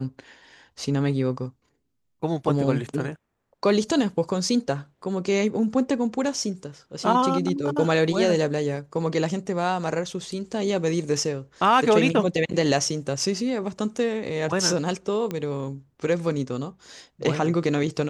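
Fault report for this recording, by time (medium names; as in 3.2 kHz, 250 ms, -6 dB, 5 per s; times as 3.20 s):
15.31 s: pop -16 dBFS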